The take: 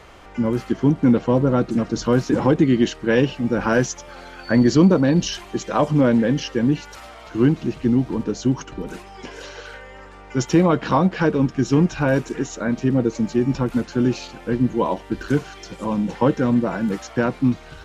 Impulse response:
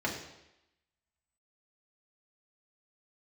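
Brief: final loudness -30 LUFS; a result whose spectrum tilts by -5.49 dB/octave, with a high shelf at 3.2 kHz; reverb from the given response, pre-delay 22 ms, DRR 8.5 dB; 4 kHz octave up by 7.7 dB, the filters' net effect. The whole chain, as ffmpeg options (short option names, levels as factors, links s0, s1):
-filter_complex "[0:a]highshelf=f=3200:g=3.5,equalizer=f=4000:t=o:g=8,asplit=2[s0][s1];[1:a]atrim=start_sample=2205,adelay=22[s2];[s1][s2]afir=irnorm=-1:irlink=0,volume=0.158[s3];[s0][s3]amix=inputs=2:normalize=0,volume=0.282"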